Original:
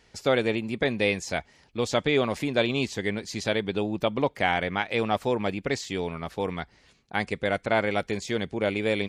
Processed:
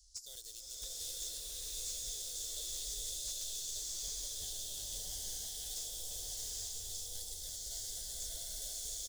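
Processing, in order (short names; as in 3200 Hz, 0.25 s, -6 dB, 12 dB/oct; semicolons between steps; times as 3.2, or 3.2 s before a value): in parallel at -9 dB: sample gate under -25 dBFS; on the sum: inverse Chebyshev band-stop 110–2500 Hz, stop band 50 dB; high shelf 7400 Hz -9.5 dB; echo 1.186 s -6.5 dB; wavefolder -39 dBFS; low shelf 62 Hz -8.5 dB; compressor 4:1, threshold -57 dBFS, peak gain reduction 12 dB; crackling interface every 0.34 s, samples 512, repeat, from 0.33; bloom reverb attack 0.87 s, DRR -6.5 dB; gain +11.5 dB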